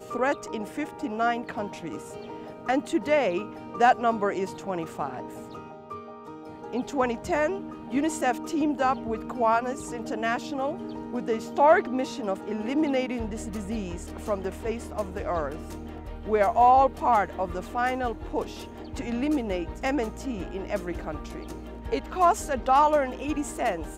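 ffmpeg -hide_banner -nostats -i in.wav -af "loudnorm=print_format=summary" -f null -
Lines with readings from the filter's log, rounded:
Input Integrated:    -26.8 LUFS
Input True Peak:      -7.5 dBTP
Input LRA:             6.4 LU
Input Threshold:     -37.4 LUFS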